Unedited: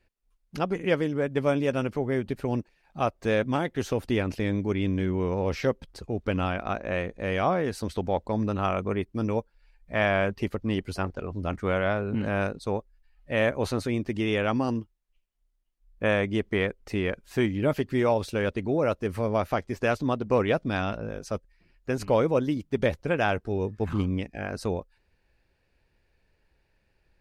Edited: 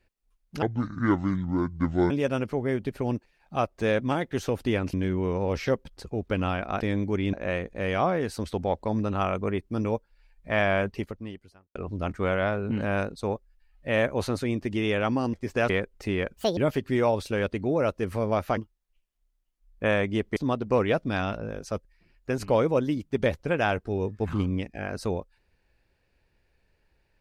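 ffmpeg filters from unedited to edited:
-filter_complex "[0:a]asplit=13[a][b][c][d][e][f][g][h][i][j][k][l][m];[a]atrim=end=0.624[n];[b]atrim=start=0.62:end=1.54,asetpts=PTS-STARTPTS,asetrate=27342,aresample=44100[o];[c]atrim=start=1.536:end=4.372[p];[d]atrim=start=4.898:end=6.772[q];[e]atrim=start=4.368:end=4.902[r];[f]atrim=start=6.768:end=11.19,asetpts=PTS-STARTPTS,afade=t=out:st=3.542:d=0.88:c=qua[s];[g]atrim=start=11.19:end=14.772,asetpts=PTS-STARTPTS,afade=t=in:d=0.004:c=hsin[t];[h]atrim=start=19.598:end=19.962[u];[i]atrim=start=16.558:end=17.234[v];[j]atrim=start=17.23:end=17.6,asetpts=PTS-STARTPTS,asetrate=78057,aresample=44100[w];[k]atrim=start=17.596:end=19.602[x];[l]atrim=start=14.768:end=16.562[y];[m]atrim=start=19.958[z];[n][o]acrossfade=d=0.004:c1=hsin:c2=hsin[aa];[aa][p]acrossfade=d=0.004:c1=hsin:c2=hsin[ab];[ab][q]acrossfade=d=0.004:c1=hsin:c2=hsin[ac];[ac][r]acrossfade=d=0.004:c1=hsin:c2=hsin[ad];[s][t]concat=n=2:v=0:a=1[ae];[ad][ae]acrossfade=d=0.004:c1=hsin:c2=hsin[af];[af][u]acrossfade=d=0.004:c1=hsin:c2=hsin[ag];[ag][v]acrossfade=d=0.004:c1=hsin:c2=hsin[ah];[ah][w]acrossfade=d=0.004:c1=hsin:c2=hsin[ai];[ai][x]acrossfade=d=0.004:c1=hsin:c2=hsin[aj];[aj][y]acrossfade=d=0.004:c1=hsin:c2=hsin[ak];[ak][z]acrossfade=d=0.004:c1=hsin:c2=hsin"

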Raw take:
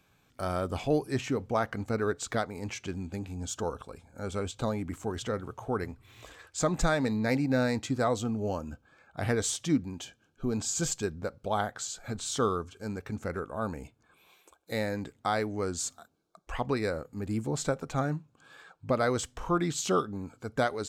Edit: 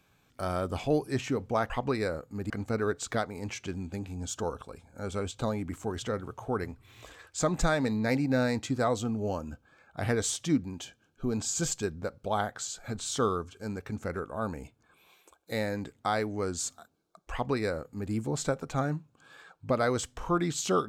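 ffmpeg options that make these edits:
-filter_complex "[0:a]asplit=3[a][b][c];[a]atrim=end=1.702[d];[b]atrim=start=16.518:end=17.322[e];[c]atrim=start=1.698[f];[d][e]acrossfade=d=0.004:c1=hsin:c2=hsin[g];[g][f]acrossfade=d=0.004:c1=hsin:c2=hsin"

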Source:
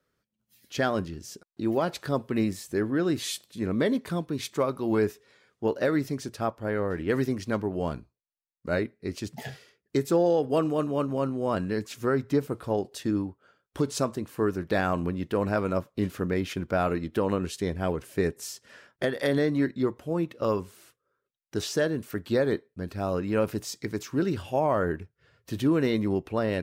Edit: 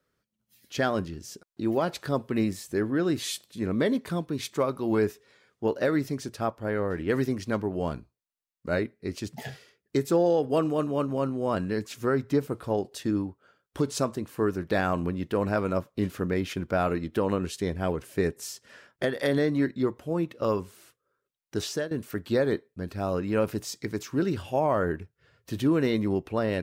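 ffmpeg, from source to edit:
-filter_complex "[0:a]asplit=2[a][b];[a]atrim=end=21.91,asetpts=PTS-STARTPTS,afade=t=out:st=21.59:d=0.32:c=qsin:silence=0.158489[c];[b]atrim=start=21.91,asetpts=PTS-STARTPTS,afade=t=in:d=0.004:c=hsin:silence=0.158489[d];[c][d]concat=n=2:v=0:a=1"

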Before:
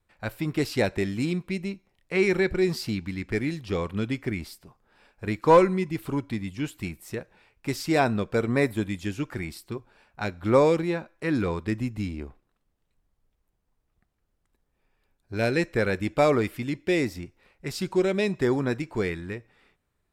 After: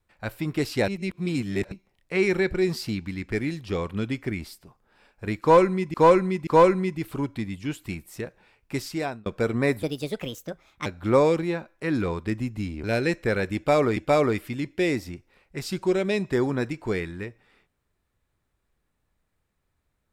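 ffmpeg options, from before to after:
-filter_complex "[0:a]asplit=10[a][b][c][d][e][f][g][h][i][j];[a]atrim=end=0.882[k];[b]atrim=start=0.878:end=1.722,asetpts=PTS-STARTPTS,areverse[l];[c]atrim=start=1.718:end=5.942[m];[d]atrim=start=5.408:end=5.942[n];[e]atrim=start=5.408:end=8.2,asetpts=PTS-STARTPTS,afade=t=out:st=2.282:d=0.51[o];[f]atrim=start=8.2:end=8.774,asetpts=PTS-STARTPTS,afade=t=in:d=0.004:c=hsin[p];[g]atrim=start=8.77:end=10.26,asetpts=PTS-STARTPTS,asetrate=63945,aresample=44100[q];[h]atrim=start=10.256:end=12.242[r];[i]atrim=start=15.338:end=16.472[s];[j]atrim=start=16.058[t];[k][l]acrossfade=d=0.004:c1=hsin:c2=hsin[u];[u][m]acrossfade=d=0.004:c1=hsin:c2=hsin[v];[v][n]acrossfade=d=0.004:c1=hsin:c2=hsin[w];[o][p]concat=n=2:v=0:a=1[x];[w][x]acrossfade=d=0.004:c1=hsin:c2=hsin[y];[y][q]acrossfade=d=0.004:c1=hsin:c2=hsin[z];[z][r]acrossfade=d=0.004:c1=hsin:c2=hsin[aa];[aa][s]acrossfade=d=0.004:c1=hsin:c2=hsin[ab];[ab][t]acrossfade=d=0.004:c1=hsin:c2=hsin"

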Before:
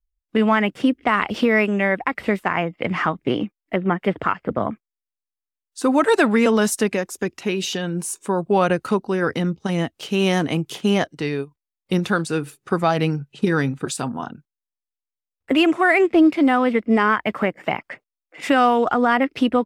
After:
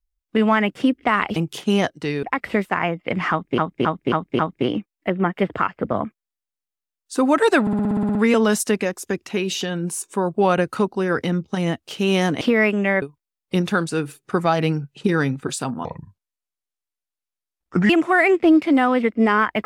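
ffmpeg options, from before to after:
-filter_complex "[0:a]asplit=20[a][b][c][d][e][f][g][h][i][j][k][l][m][n][o][p][q][r][s][t];[a]atrim=end=1.362[u];[b]atrim=start=10.528:end=11.402[v];[c]atrim=start=1.968:end=3.322[w];[d]atrim=start=3.048:end=3.322[x];[e]atrim=start=3.048:end=3.322[y];[f]atrim=start=3.048:end=3.322[z];[g]atrim=start=3.048:end=6.332[aa];[h]atrim=start=6.268:end=6.332[ab];[i]atrim=start=6.268:end=6.332[ac];[j]atrim=start=6.268:end=6.332[ad];[k]atrim=start=6.268:end=6.332[ae];[l]atrim=start=6.268:end=6.332[af];[m]atrim=start=6.268:end=6.332[ag];[n]atrim=start=6.268:end=6.332[ah];[o]atrim=start=6.268:end=6.332[ai];[p]atrim=start=6.268:end=10.532[aj];[q]atrim=start=1.358:end=1.972[ak];[r]atrim=start=11.398:end=14.234[al];[s]atrim=start=14.23:end=15.6,asetpts=PTS-STARTPTS,asetrate=29547,aresample=44100[am];[t]atrim=start=15.596[an];[u][v]acrossfade=d=0.004:c1=hsin:c2=hsin[ao];[ao][w]acrossfade=d=0.004:c1=hsin:c2=hsin[ap];[ap][x]acrossfade=d=0.004:c1=hsin:c2=hsin[aq];[aq][y]acrossfade=d=0.004:c1=hsin:c2=hsin[ar];[ar][z]acrossfade=d=0.004:c1=hsin:c2=hsin[as];[as][aa]acrossfade=d=0.004:c1=hsin:c2=hsin[at];[at][ab]acrossfade=d=0.004:c1=hsin:c2=hsin[au];[au][ac]acrossfade=d=0.004:c1=hsin:c2=hsin[av];[av][ad]acrossfade=d=0.004:c1=hsin:c2=hsin[aw];[aw][ae]acrossfade=d=0.004:c1=hsin:c2=hsin[ax];[ax][af]acrossfade=d=0.004:c1=hsin:c2=hsin[ay];[ay][ag]acrossfade=d=0.004:c1=hsin:c2=hsin[az];[az][ah]acrossfade=d=0.004:c1=hsin:c2=hsin[ba];[ba][ai]acrossfade=d=0.004:c1=hsin:c2=hsin[bb];[bb][aj]acrossfade=d=0.004:c1=hsin:c2=hsin[bc];[bc][ak]acrossfade=d=0.004:c1=hsin:c2=hsin[bd];[bd][al]acrossfade=d=0.004:c1=hsin:c2=hsin[be];[be][am]acrossfade=d=0.004:c1=hsin:c2=hsin[bf];[bf][an]acrossfade=d=0.004:c1=hsin:c2=hsin"

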